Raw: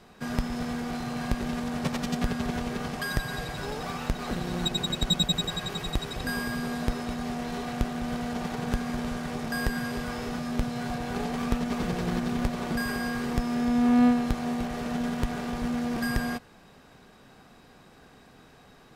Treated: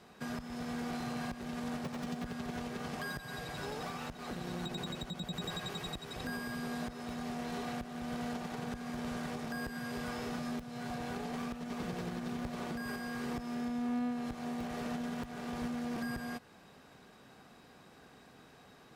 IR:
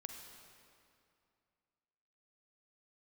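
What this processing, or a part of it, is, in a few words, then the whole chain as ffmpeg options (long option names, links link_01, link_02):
podcast mastering chain: -af "highpass=frequency=100:poles=1,deesser=0.85,acompressor=threshold=-31dB:ratio=3,alimiter=level_in=1dB:limit=-24dB:level=0:latency=1:release=396,volume=-1dB,volume=-3dB" -ar 48000 -c:a libmp3lame -b:a 112k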